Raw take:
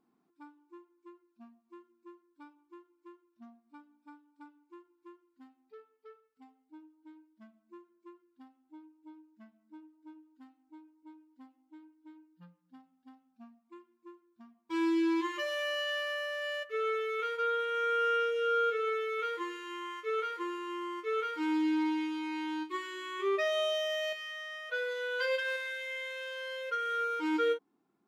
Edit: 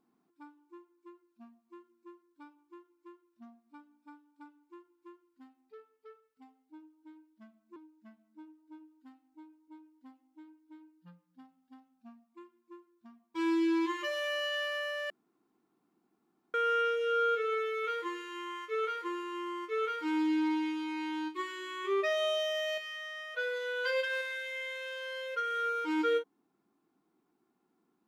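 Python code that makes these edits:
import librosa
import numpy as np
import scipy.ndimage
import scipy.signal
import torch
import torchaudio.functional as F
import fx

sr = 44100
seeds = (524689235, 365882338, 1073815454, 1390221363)

y = fx.edit(x, sr, fx.cut(start_s=7.76, length_s=1.35),
    fx.room_tone_fill(start_s=16.45, length_s=1.44), tone=tone)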